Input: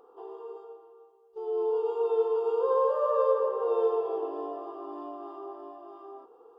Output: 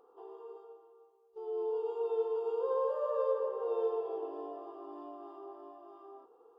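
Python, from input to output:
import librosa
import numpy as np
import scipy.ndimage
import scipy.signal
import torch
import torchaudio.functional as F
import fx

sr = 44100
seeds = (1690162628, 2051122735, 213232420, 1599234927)

y = fx.dynamic_eq(x, sr, hz=1200.0, q=3.7, threshold_db=-48.0, ratio=4.0, max_db=-5)
y = y * 10.0 ** (-6.5 / 20.0)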